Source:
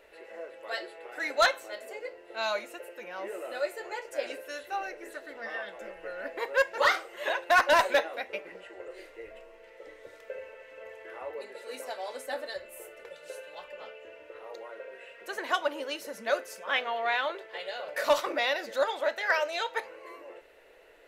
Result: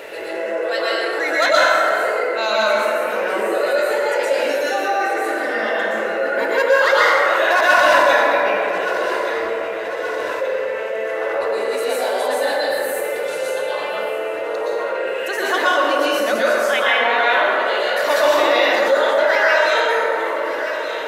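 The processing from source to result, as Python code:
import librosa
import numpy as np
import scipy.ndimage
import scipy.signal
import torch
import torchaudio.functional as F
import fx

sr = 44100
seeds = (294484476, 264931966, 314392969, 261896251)

y = scipy.signal.sosfilt(scipy.signal.butter(2, 140.0, 'highpass', fs=sr, output='sos'), x)
y = fx.echo_feedback(y, sr, ms=1175, feedback_pct=45, wet_db=-19)
y = fx.rev_plate(y, sr, seeds[0], rt60_s=2.0, hf_ratio=0.45, predelay_ms=105, drr_db=-9.0)
y = fx.env_flatten(y, sr, amount_pct=50)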